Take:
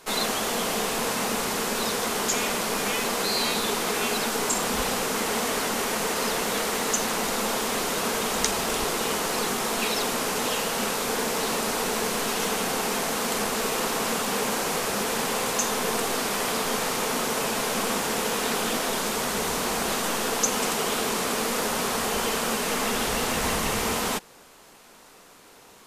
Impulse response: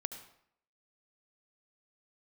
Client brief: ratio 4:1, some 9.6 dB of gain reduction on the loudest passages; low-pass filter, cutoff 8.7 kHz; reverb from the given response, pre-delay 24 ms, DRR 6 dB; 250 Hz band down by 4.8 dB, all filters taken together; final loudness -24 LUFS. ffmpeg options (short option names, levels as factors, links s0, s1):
-filter_complex "[0:a]lowpass=8700,equalizer=f=250:t=o:g=-6,acompressor=threshold=0.0224:ratio=4,asplit=2[s0][s1];[1:a]atrim=start_sample=2205,adelay=24[s2];[s1][s2]afir=irnorm=-1:irlink=0,volume=0.531[s3];[s0][s3]amix=inputs=2:normalize=0,volume=2.82"